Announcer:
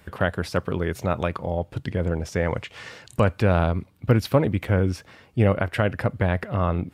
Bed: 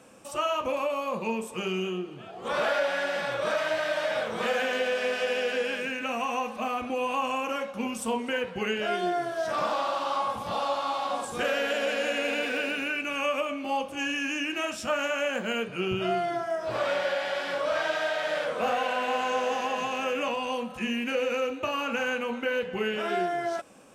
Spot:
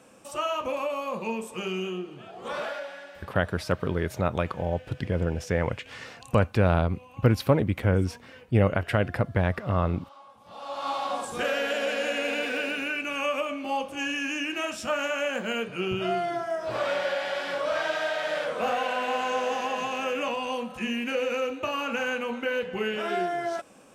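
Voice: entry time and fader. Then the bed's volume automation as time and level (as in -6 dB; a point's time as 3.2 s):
3.15 s, -2.0 dB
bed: 2.41 s -1 dB
3.35 s -22 dB
10.37 s -22 dB
10.88 s 0 dB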